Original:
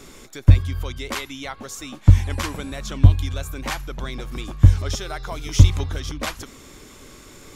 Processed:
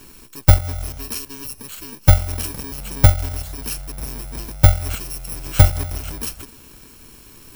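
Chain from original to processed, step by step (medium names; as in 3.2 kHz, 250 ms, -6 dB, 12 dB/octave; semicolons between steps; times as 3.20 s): bit-reversed sample order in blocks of 64 samples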